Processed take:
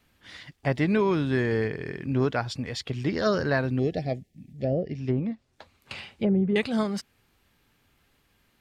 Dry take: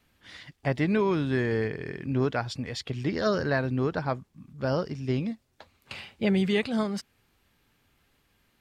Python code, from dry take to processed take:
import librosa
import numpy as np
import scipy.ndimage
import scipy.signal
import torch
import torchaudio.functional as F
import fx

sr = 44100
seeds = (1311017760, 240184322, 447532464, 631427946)

y = fx.env_lowpass_down(x, sr, base_hz=540.0, full_db=-21.0, at=(4.57, 6.56))
y = fx.spec_box(y, sr, start_s=3.79, length_s=1.18, low_hz=790.0, high_hz=1700.0, gain_db=-26)
y = F.gain(torch.from_numpy(y), 1.5).numpy()